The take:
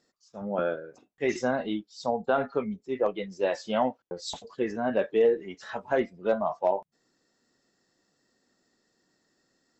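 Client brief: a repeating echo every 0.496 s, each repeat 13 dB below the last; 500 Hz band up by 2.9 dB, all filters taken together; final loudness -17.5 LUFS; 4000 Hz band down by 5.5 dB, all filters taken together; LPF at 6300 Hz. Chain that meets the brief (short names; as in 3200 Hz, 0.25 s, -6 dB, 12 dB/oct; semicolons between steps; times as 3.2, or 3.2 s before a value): LPF 6300 Hz; bell 500 Hz +3.5 dB; bell 4000 Hz -6.5 dB; feedback echo 0.496 s, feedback 22%, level -13 dB; gain +9.5 dB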